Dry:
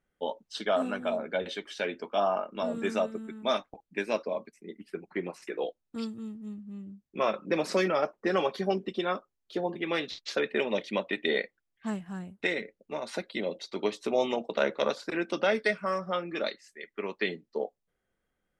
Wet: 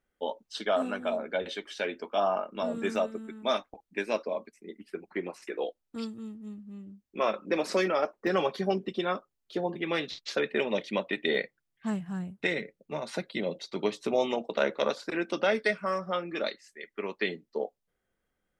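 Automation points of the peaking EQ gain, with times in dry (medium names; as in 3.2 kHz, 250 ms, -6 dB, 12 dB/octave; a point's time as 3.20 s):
peaking EQ 150 Hz 0.51 oct
-8 dB
from 2.24 s -1 dB
from 2.96 s -8 dB
from 8.27 s +3.5 dB
from 11.35 s +10 dB
from 14.16 s -1 dB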